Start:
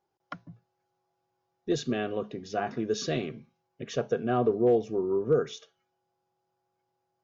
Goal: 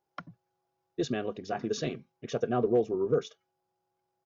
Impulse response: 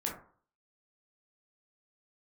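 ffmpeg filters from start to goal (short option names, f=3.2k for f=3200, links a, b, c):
-af "atempo=1.7,volume=-1.5dB"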